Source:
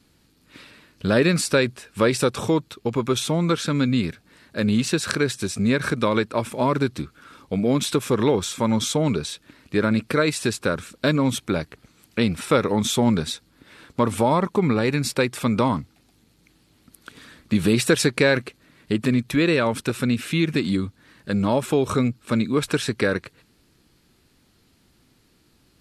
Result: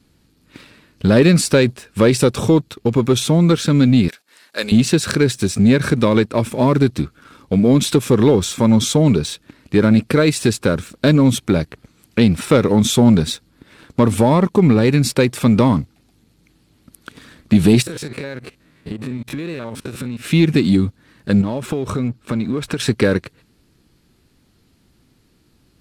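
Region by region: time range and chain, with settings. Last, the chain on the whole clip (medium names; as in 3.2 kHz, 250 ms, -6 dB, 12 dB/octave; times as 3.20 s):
4.08–4.72 s: gate -57 dBFS, range -12 dB + high-pass 590 Hz + treble shelf 2.8 kHz +9 dB
17.82–20.25 s: spectrogram pixelated in time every 50 ms + compression 8:1, threshold -32 dBFS
21.41–22.80 s: treble shelf 6 kHz -6.5 dB + compression 5:1, threshold -26 dBFS
whole clip: bass shelf 400 Hz +5.5 dB; waveshaping leveller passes 1; dynamic bell 1.2 kHz, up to -4 dB, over -28 dBFS, Q 0.79; trim +1.5 dB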